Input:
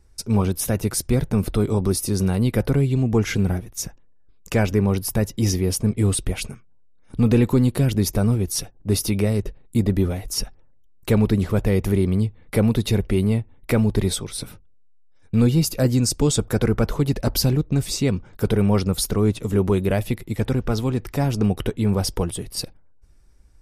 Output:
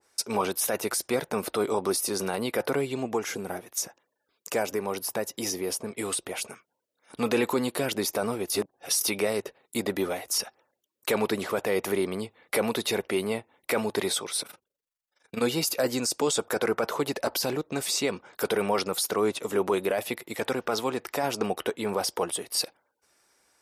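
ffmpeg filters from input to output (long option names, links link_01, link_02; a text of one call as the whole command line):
ffmpeg -i in.wav -filter_complex "[0:a]asettb=1/sr,asplit=3[link_01][link_02][link_03];[link_01]atrim=end=3.054[link_04];[link_02]atrim=start=3.05:end=6.48,asetpts=PTS-STARTPTS,afade=type=in:duration=0.004:curve=qsin,afade=type=out:start_time=3.426:duration=0.004:curve=qsin,acrossover=split=1000|6000[link_05][link_06][link_07];[link_05]acompressor=threshold=-20dB:ratio=4[link_08];[link_06]acompressor=threshold=-42dB:ratio=4[link_09];[link_07]acompressor=threshold=-36dB:ratio=4[link_10];[link_08][link_09][link_10]amix=inputs=3:normalize=0[link_11];[link_03]atrim=start=6.476[link_12];[link_04][link_11]acrossfade=duration=0.004:curve1=hsin:curve2=qsin[link_13];[link_13][link_12]acrossfade=duration=0.004:curve1=qsin:curve2=hsin,asplit=3[link_14][link_15][link_16];[link_14]afade=type=out:start_time=14.41:duration=0.02[link_17];[link_15]tremolo=f=24:d=0.824,afade=type=in:start_time=14.41:duration=0.02,afade=type=out:start_time=15.41:duration=0.02[link_18];[link_16]afade=type=in:start_time=15.41:duration=0.02[link_19];[link_17][link_18][link_19]amix=inputs=3:normalize=0,asplit=3[link_20][link_21][link_22];[link_20]atrim=end=8.502[link_23];[link_21]atrim=start=8.498:end=9.012,asetpts=PTS-STARTPTS,areverse[link_24];[link_22]atrim=start=9.008[link_25];[link_23][link_24]acrossfade=duration=0.004:curve1=hsin:curve2=hsin[link_26];[link_26][link_25]acrossfade=duration=0.004:curve1=hsin:curve2=hsin,highpass=600,alimiter=limit=-20.5dB:level=0:latency=1:release=11,adynamicequalizer=threshold=0.00447:dfrequency=1500:dqfactor=0.7:tfrequency=1500:tqfactor=0.7:attack=5:release=100:ratio=0.375:range=2:mode=cutabove:tftype=highshelf,volume=5.5dB" out.wav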